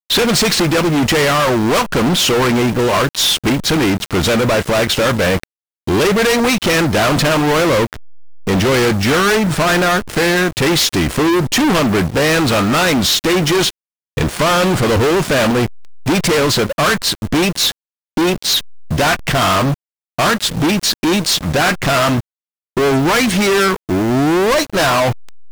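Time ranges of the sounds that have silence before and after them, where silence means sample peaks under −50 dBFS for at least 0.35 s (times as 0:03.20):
0:05.87–0:13.70
0:14.17–0:17.72
0:18.17–0:19.74
0:20.18–0:22.20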